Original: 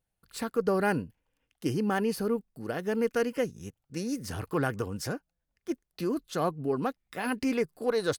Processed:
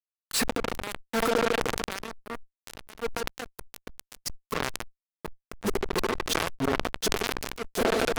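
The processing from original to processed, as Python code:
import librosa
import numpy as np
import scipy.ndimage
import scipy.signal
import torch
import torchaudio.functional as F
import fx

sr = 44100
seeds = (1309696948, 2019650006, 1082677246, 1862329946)

p1 = fx.fade_in_head(x, sr, length_s=1.03)
p2 = fx.echo_feedback(p1, sr, ms=713, feedback_pct=42, wet_db=-7.0)
p3 = fx.gate_flip(p2, sr, shuts_db=-29.0, range_db=-37)
p4 = fx.low_shelf(p3, sr, hz=250.0, db=-9.5)
p5 = p4 + 0.54 * np.pad(p4, (int(4.5 * sr / 1000.0), 0))[:len(p4)]
p6 = p5 + fx.echo_wet_bandpass(p5, sr, ms=74, feedback_pct=77, hz=560.0, wet_db=-12.5, dry=0)
p7 = fx.dynamic_eq(p6, sr, hz=460.0, q=0.81, threshold_db=-59.0, ratio=4.0, max_db=4)
p8 = fx.fuzz(p7, sr, gain_db=64.0, gate_db=-59.0)
p9 = fx.transient(p8, sr, attack_db=-1, sustain_db=12)
p10 = fx.sustainer(p9, sr, db_per_s=29.0)
y = F.gain(torch.from_numpy(p10), -9.5).numpy()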